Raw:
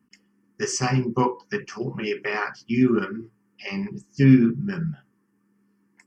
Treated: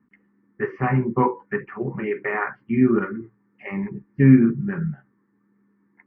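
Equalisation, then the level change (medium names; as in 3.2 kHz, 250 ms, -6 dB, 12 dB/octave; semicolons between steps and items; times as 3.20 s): elliptic low-pass 2.1 kHz, stop band 80 dB; +2.5 dB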